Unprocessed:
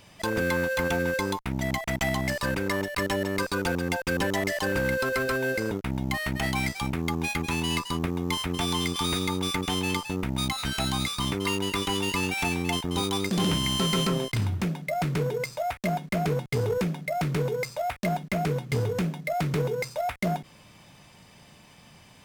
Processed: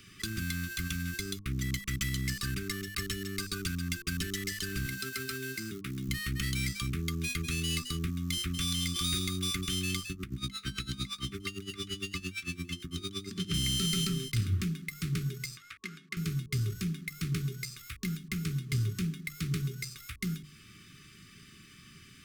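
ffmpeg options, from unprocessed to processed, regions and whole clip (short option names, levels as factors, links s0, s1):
-filter_complex "[0:a]asettb=1/sr,asplit=3[s0][s1][s2];[s0]atrim=end=4.864[s3];[s1]atrim=start=4.86:end=6.08,asetpts=PTS-STARTPTS,afade=t=in:d=0.004:c=qsin,afade=t=out:st=1.216:d=0.004:c=qsin,highpass=150,acrusher=bits=7:mode=log:mix=0:aa=0.000001[s4];[s2]atrim=start=6.076[s5];[s3][s4]acrossfade=d=0.004:c1=hsin:c2=qsin[s6];[s6][s5]acrossfade=d=0.004:c1=qsin:c2=hsin,asettb=1/sr,asplit=3[s7][s8][s9];[s7]atrim=end=10.114[s10];[s8]atrim=start=10.11:end=13.54,asetpts=PTS-STARTPTS,afade=t=in:d=0.004:c=qsin,afade=t=out:st=3.426:d=0.004:c=qsin,acrossover=split=6300[s11][s12];[s12]acompressor=threshold=0.00562:ratio=4:attack=1:release=60[s13];[s11][s13]amix=inputs=2:normalize=0,highpass=46,aeval=exprs='val(0)*pow(10,-22*(0.5-0.5*cos(2*PI*8.8*n/s))/20)':c=same[s14];[s9]atrim=start=13.536[s15];[s10][s14]acrossfade=d=0.004:c1=hsin:c2=qsin[s16];[s16][s15]acrossfade=d=0.004:c1=qsin:c2=hsin,asettb=1/sr,asplit=3[s17][s18][s19];[s17]atrim=end=15.574[s20];[s18]atrim=start=15.57:end=16.17,asetpts=PTS-STARTPTS,afade=t=in:d=0.004:c=qsin,afade=t=out:st=0.596:d=0.004:c=qsin,highpass=f=870:p=1,aemphasis=mode=production:type=75fm,adynamicsmooth=sensitivity=0.5:basefreq=2300[s21];[s19]atrim=start=16.166[s22];[s20][s21]acrossfade=d=0.004:c1=hsin:c2=qsin[s23];[s23][s22]acrossfade=d=0.004:c1=qsin:c2=hsin,acrossover=split=170|3000[s24][s25][s26];[s25]acompressor=threshold=0.0112:ratio=6[s27];[s24][s27][s26]amix=inputs=3:normalize=0,bandreject=f=50:t=h:w=6,bandreject=f=100:t=h:w=6,bandreject=f=150:t=h:w=6,bandreject=f=200:t=h:w=6,bandreject=f=250:t=h:w=6,bandreject=f=300:t=h:w=6,bandreject=f=350:t=h:w=6,afftfilt=real='re*(1-between(b*sr/4096,430,1100))':imag='im*(1-between(b*sr/4096,430,1100))':win_size=4096:overlap=0.75"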